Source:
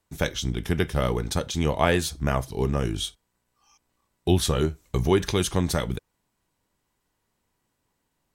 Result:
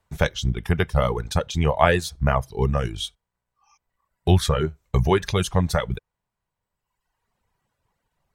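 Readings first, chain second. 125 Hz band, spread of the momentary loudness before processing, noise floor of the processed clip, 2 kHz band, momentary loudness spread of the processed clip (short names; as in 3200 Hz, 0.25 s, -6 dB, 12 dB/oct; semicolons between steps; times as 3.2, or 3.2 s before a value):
+4.0 dB, 7 LU, -84 dBFS, +3.5 dB, 9 LU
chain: bell 290 Hz -12.5 dB 0.84 oct; reverb removal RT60 1.4 s; high shelf 3100 Hz -11.5 dB; gain +7.5 dB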